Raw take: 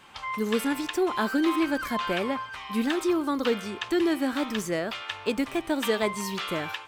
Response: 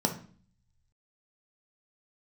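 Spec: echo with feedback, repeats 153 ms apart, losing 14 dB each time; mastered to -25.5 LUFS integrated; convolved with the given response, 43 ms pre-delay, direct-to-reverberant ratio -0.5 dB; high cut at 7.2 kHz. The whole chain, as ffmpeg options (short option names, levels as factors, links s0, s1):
-filter_complex "[0:a]lowpass=7200,aecho=1:1:153|306:0.2|0.0399,asplit=2[s0][s1];[1:a]atrim=start_sample=2205,adelay=43[s2];[s1][s2]afir=irnorm=-1:irlink=0,volume=0.398[s3];[s0][s3]amix=inputs=2:normalize=0,volume=0.562"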